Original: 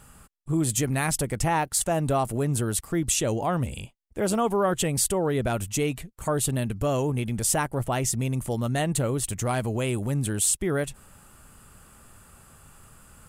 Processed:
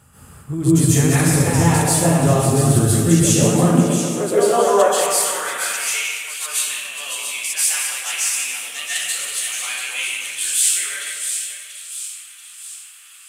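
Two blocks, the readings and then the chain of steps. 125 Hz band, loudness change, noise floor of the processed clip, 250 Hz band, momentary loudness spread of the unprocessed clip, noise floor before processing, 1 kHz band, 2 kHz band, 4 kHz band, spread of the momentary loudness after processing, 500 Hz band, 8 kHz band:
+8.5 dB, +8.5 dB, -43 dBFS, +8.5 dB, 5 LU, -54 dBFS, +6.0 dB, +10.5 dB, +11.5 dB, 14 LU, +7.0 dB, +9.5 dB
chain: reverse delay 0.292 s, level -8 dB; high-pass sweep 87 Hz -> 2500 Hz, 2.77–5.86; on a send: split-band echo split 2700 Hz, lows 0.152 s, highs 0.685 s, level -8 dB; on the sum: dynamic EQ 910 Hz, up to -4 dB, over -34 dBFS, Q 0.82; plate-style reverb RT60 0.96 s, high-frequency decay 0.9×, pre-delay 0.12 s, DRR -9.5 dB; gain -2 dB

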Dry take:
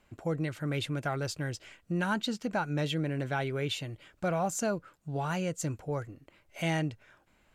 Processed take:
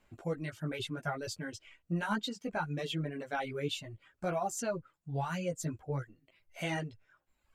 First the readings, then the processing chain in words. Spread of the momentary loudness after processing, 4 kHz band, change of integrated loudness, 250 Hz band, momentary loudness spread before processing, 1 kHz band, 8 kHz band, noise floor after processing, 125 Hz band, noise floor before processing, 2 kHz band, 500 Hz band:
7 LU, -3.0 dB, -4.0 dB, -5.0 dB, 7 LU, -2.5 dB, -4.0 dB, -80 dBFS, -5.0 dB, -68 dBFS, -3.5 dB, -3.5 dB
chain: chorus voices 4, 0.65 Hz, delay 15 ms, depth 4 ms; reverb removal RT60 1.1 s

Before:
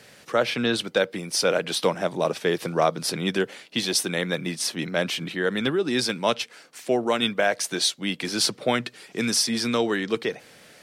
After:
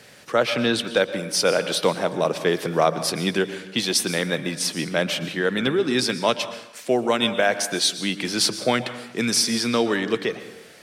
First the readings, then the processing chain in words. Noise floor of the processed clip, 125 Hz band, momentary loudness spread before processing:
-46 dBFS, +2.0 dB, 6 LU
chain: plate-style reverb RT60 0.84 s, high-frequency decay 0.75×, pre-delay 0.105 s, DRR 11.5 dB; gain +2 dB

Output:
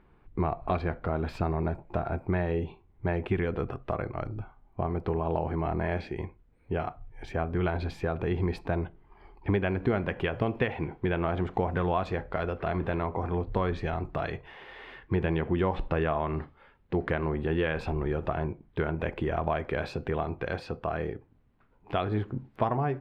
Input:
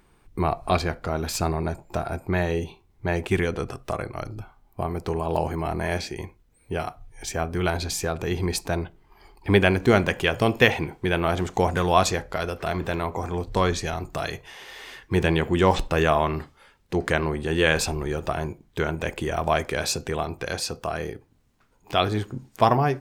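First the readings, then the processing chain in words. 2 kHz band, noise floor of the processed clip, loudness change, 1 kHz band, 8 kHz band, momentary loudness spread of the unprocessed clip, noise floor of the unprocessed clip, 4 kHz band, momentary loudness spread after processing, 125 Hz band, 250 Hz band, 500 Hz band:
-9.0 dB, -62 dBFS, -6.0 dB, -7.0 dB, under -30 dB, 14 LU, -61 dBFS, -15.5 dB, 8 LU, -3.5 dB, -4.5 dB, -5.5 dB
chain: compressor 4:1, threshold -23 dBFS, peak gain reduction 10.5 dB; air absorption 470 m

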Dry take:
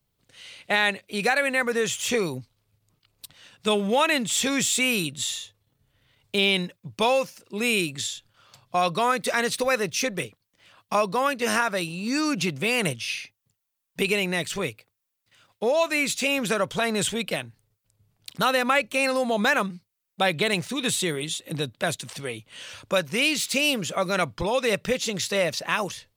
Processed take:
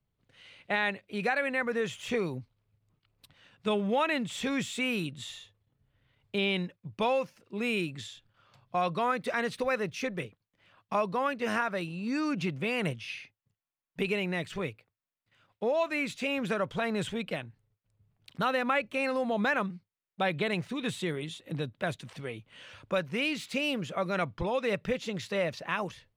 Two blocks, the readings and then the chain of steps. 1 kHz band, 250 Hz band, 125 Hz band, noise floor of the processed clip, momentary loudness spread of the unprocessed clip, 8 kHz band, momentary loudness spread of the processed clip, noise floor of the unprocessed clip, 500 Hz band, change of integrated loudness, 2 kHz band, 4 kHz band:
-6.0 dB, -4.5 dB, -3.5 dB, under -85 dBFS, 11 LU, -18.5 dB, 11 LU, -80 dBFS, -6.0 dB, -7.0 dB, -7.5 dB, -11.0 dB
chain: tone controls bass +3 dB, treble -14 dB; gain -6 dB

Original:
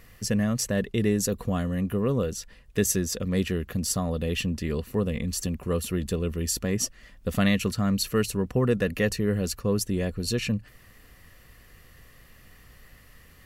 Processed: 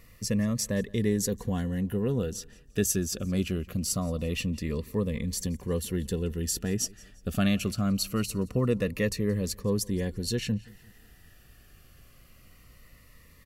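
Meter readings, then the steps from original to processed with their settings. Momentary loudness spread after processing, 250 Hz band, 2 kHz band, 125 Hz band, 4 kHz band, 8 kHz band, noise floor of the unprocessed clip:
5 LU, -2.0 dB, -5.0 dB, -2.0 dB, -2.5 dB, -2.0 dB, -54 dBFS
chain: feedback echo 0.174 s, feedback 41%, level -24 dB; cascading phaser falling 0.23 Hz; gain -2 dB

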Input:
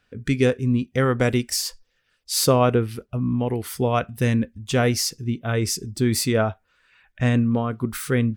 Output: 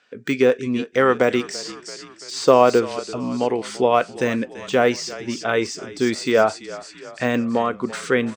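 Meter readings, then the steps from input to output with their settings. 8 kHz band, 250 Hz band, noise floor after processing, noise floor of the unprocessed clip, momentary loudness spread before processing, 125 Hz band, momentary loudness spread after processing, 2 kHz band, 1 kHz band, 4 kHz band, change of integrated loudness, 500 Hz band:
-5.5 dB, -0.5 dB, -45 dBFS, -68 dBFS, 7 LU, -12.0 dB, 15 LU, +4.5 dB, +6.0 dB, -1.5 dB, +2.0 dB, +5.5 dB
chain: steep low-pass 8200 Hz 48 dB/oct; on a send: frequency-shifting echo 0.336 s, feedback 58%, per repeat -35 Hz, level -18 dB; on the sum: de-esser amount 95%; HPF 380 Hz 12 dB/oct; gain +7.5 dB

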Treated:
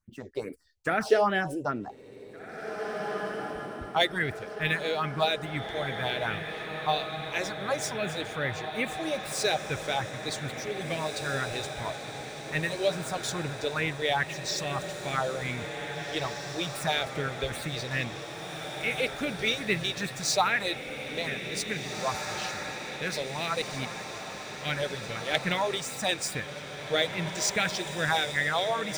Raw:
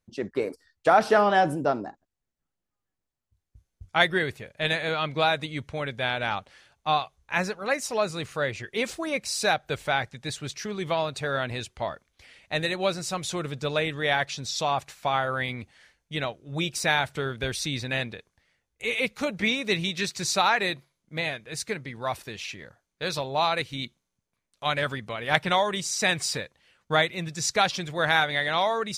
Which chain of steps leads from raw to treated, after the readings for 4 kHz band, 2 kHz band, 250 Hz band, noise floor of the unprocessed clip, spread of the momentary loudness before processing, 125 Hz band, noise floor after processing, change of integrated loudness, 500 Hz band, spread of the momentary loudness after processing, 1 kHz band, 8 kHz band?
-2.0 dB, -3.0 dB, -2.5 dB, -84 dBFS, 11 LU, -1.5 dB, -41 dBFS, -3.5 dB, -2.5 dB, 9 LU, -5.0 dB, -1.5 dB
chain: median filter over 3 samples; phaser stages 4, 2.4 Hz, lowest notch 160–1000 Hz; diffused feedback echo 1.983 s, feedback 62%, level -7 dB

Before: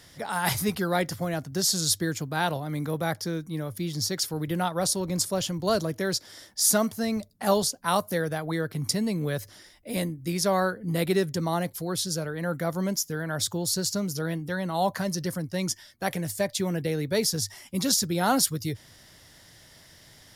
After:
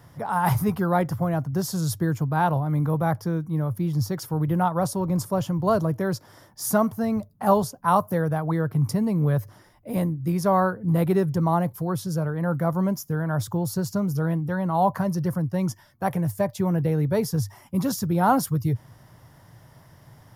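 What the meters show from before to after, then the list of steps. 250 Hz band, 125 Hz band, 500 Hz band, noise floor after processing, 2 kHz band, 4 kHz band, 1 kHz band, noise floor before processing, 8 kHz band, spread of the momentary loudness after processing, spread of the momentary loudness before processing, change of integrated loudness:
+5.0 dB, +8.0 dB, +2.5 dB, -53 dBFS, -2.0 dB, -11.5 dB, +5.5 dB, -54 dBFS, -9.0 dB, 6 LU, 8 LU, +3.0 dB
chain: graphic EQ 125/1000/2000/4000/8000 Hz +12/+9/-5/-11/-9 dB

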